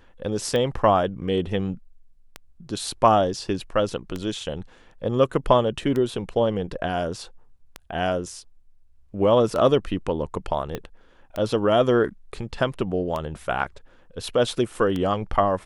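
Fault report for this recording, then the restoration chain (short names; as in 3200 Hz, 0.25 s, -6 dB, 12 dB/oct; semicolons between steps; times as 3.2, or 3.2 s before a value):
tick 33 1/3 rpm -15 dBFS
10.75 pop -15 dBFS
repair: de-click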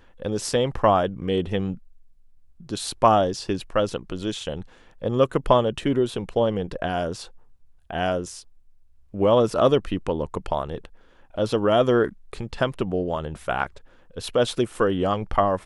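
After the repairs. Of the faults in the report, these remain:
10.75 pop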